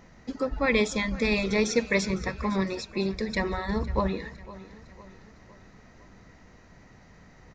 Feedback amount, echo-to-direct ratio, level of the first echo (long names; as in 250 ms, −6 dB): 50%, −17.0 dB, −18.0 dB